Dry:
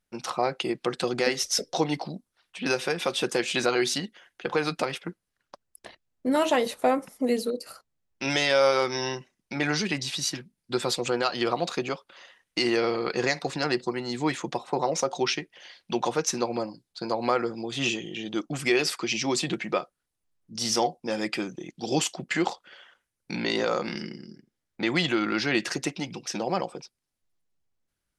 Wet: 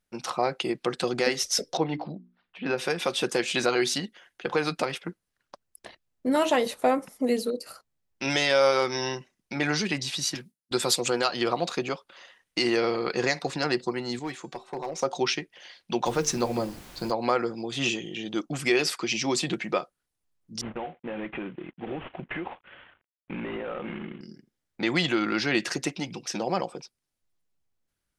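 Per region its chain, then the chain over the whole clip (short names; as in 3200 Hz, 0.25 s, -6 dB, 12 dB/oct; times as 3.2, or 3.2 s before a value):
1.77–2.78 air absorption 350 m + notches 60/120/180/240/300/360/420 Hz
10.35–11.26 HPF 94 Hz + gate with hold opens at -37 dBFS, closes at -42 dBFS + high shelf 5800 Hz +11.5 dB
14.19–15.02 hard clip -19.5 dBFS + resonator 380 Hz, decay 0.36 s
16.05–17.1 low shelf 140 Hz +12 dB + notches 50/100/150/200/250/300/350/400/450/500 Hz + added noise pink -47 dBFS
20.61–24.21 CVSD 16 kbps + compressor 10:1, threshold -29 dBFS
whole clip: dry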